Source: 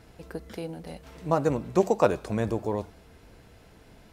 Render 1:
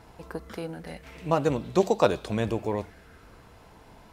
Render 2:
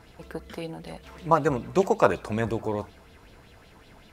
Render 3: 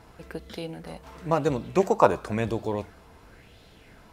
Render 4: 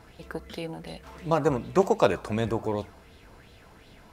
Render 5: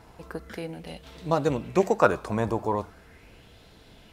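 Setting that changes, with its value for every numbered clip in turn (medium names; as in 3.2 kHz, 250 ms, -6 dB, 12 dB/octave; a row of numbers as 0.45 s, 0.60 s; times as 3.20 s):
sweeping bell, rate: 0.26 Hz, 5.3 Hz, 0.96 Hz, 2.7 Hz, 0.4 Hz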